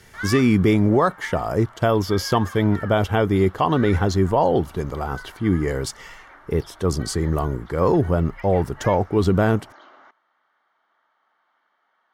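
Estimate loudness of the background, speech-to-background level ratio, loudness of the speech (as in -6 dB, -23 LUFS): -40.5 LUFS, 19.5 dB, -21.0 LUFS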